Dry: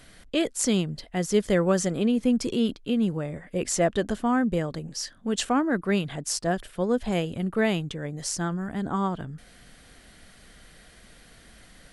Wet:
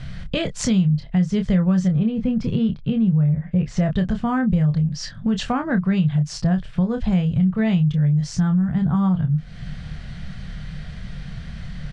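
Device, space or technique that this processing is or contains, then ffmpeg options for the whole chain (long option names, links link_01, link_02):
jukebox: -filter_complex "[0:a]asettb=1/sr,asplit=3[link_01][link_02][link_03];[link_01]atrim=end=1.884[link_04];[link_02]atrim=start=1.88:end=3.77,asetpts=PTS-STARTPTS,afade=type=in:duration=0.004:curve=qsin,afade=type=out:start_time=1.886:duration=0.004:curve=qsin,aemphasis=mode=reproduction:type=75kf[link_05];[link_03]atrim=start=3.766[link_06];[link_04][link_05]acrossfade=duration=0.004:curve1=hsin:curve2=qsin[link_07];[link_07][link_06]acrossfade=duration=0.004:curve1=qsin:curve2=hsin,lowpass=5300,lowpass=6900,lowshelf=frequency=220:width_type=q:width=3:gain=12,asplit=2[link_08][link_09];[link_09]adelay=27,volume=-7dB[link_10];[link_08][link_10]amix=inputs=2:normalize=0,acompressor=threshold=-29dB:ratio=3,volume=8.5dB"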